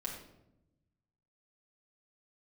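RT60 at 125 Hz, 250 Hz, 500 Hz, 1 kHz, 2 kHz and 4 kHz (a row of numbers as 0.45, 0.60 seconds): 1.7, 1.3, 1.0, 0.75, 0.60, 0.55 seconds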